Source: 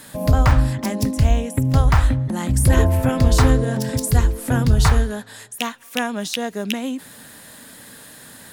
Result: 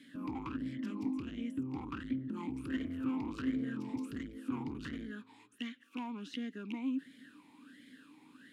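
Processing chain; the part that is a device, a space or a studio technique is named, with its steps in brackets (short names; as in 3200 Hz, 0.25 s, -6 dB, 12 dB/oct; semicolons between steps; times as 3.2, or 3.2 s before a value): talk box (tube stage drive 21 dB, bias 0.4; vowel sweep i-u 1.4 Hz)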